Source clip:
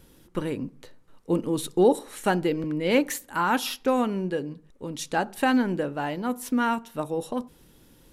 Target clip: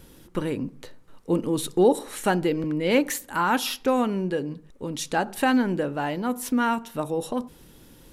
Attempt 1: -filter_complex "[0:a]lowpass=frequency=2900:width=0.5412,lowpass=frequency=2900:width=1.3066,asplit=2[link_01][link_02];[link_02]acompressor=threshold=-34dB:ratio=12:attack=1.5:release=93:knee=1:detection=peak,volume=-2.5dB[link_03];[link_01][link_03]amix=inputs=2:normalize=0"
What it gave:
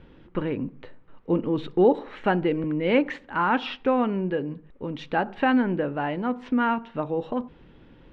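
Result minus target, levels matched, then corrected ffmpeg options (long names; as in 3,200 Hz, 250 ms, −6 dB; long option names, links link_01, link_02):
4,000 Hz band −5.0 dB
-filter_complex "[0:a]asplit=2[link_01][link_02];[link_02]acompressor=threshold=-34dB:ratio=12:attack=1.5:release=93:knee=1:detection=peak,volume=-2.5dB[link_03];[link_01][link_03]amix=inputs=2:normalize=0"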